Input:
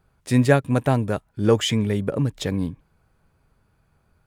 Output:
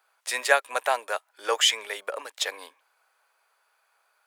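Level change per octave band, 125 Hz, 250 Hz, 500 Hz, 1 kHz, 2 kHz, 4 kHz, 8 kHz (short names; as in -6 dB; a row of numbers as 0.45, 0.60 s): under -40 dB, -32.0 dB, -7.0 dB, +1.5 dB, +4.0 dB, +5.0 dB, +5.0 dB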